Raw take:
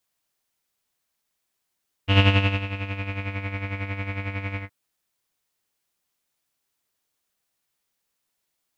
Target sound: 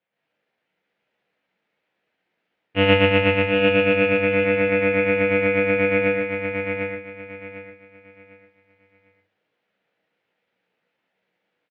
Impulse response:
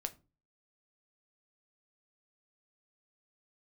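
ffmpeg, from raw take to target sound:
-filter_complex "[0:a]aemphasis=mode=production:type=50kf,atempo=0.75,dynaudnorm=f=110:g=3:m=8.5dB,highpass=160,equalizer=f=190:t=q:w=4:g=5,equalizer=f=500:t=q:w=4:g=7,equalizer=f=1.1k:t=q:w=4:g=-8,lowpass=f=2.5k:w=0.5412,lowpass=f=2.5k:w=1.3066,asplit=2[a][b];[b]adelay=33,volume=-11dB[c];[a][c]amix=inputs=2:normalize=0,aecho=1:1:751|1502|2253|3004:0.562|0.157|0.0441|0.0123,asplit=2[d][e];[1:a]atrim=start_sample=2205[f];[e][f]afir=irnorm=-1:irlink=0,volume=6.5dB[g];[d][g]amix=inputs=2:normalize=0,volume=-8dB"

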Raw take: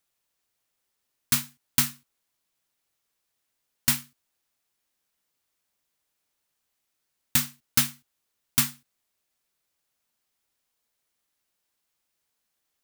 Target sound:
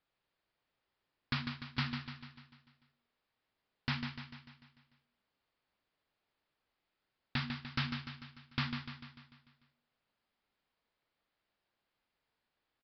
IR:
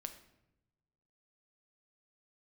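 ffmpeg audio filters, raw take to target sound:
-filter_complex "[0:a]aemphasis=mode=reproduction:type=75kf,bandreject=f=79.92:t=h:w=4,bandreject=f=159.84:t=h:w=4,bandreject=f=239.76:t=h:w=4,bandreject=f=319.68:t=h:w=4,bandreject=f=399.6:t=h:w=4,alimiter=limit=-21dB:level=0:latency=1:release=65,asplit=2[a][b];[b]aecho=0:1:148|296|444|592|740|888|1036:0.447|0.241|0.13|0.0703|0.038|0.0205|0.0111[c];[a][c]amix=inputs=2:normalize=0,aresample=11025,aresample=44100,volume=1dB"

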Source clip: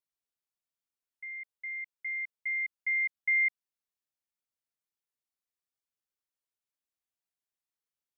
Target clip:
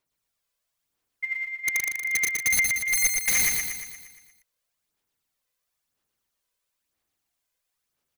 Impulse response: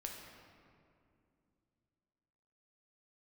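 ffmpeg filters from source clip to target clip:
-af "aphaser=in_gain=1:out_gain=1:delay=2:decay=0.63:speed=1:type=sinusoidal,aeval=exprs='(mod(21.1*val(0)+1,2)-1)/21.1':c=same,aecho=1:1:117|234|351|468|585|702|819|936:0.668|0.374|0.21|0.117|0.0657|0.0368|0.0206|0.0115,volume=8dB"

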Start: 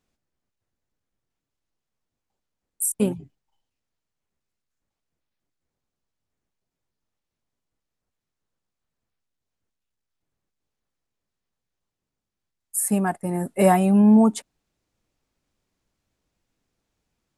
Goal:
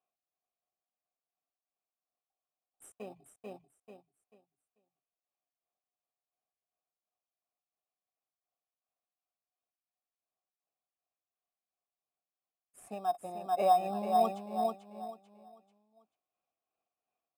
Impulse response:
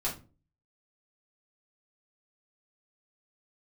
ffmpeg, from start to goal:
-filter_complex "[0:a]asplit=3[a][b][c];[a]bandpass=f=730:t=q:w=8,volume=0dB[d];[b]bandpass=f=1.09k:t=q:w=8,volume=-6dB[e];[c]bandpass=f=2.44k:t=q:w=8,volume=-9dB[f];[d][e][f]amix=inputs=3:normalize=0,aecho=1:1:440|880|1320|1760:0.631|0.196|0.0606|0.0188,tremolo=f=2.8:d=0.51,asplit=2[g][h];[h]acrusher=samples=10:mix=1:aa=0.000001,volume=-11.5dB[i];[g][i]amix=inputs=2:normalize=0"

